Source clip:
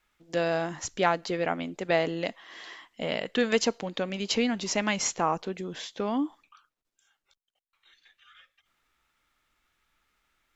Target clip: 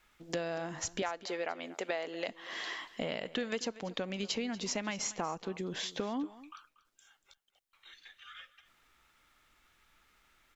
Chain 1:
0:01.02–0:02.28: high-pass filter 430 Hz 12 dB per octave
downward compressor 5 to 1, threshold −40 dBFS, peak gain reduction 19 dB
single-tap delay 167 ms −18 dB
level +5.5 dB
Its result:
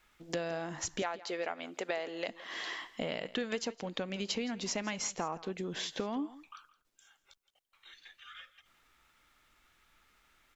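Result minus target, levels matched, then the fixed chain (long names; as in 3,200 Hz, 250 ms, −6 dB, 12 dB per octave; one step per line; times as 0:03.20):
echo 70 ms early
0:01.02–0:02.28: high-pass filter 430 Hz 12 dB per octave
downward compressor 5 to 1, threshold −40 dBFS, peak gain reduction 19 dB
single-tap delay 237 ms −18 dB
level +5.5 dB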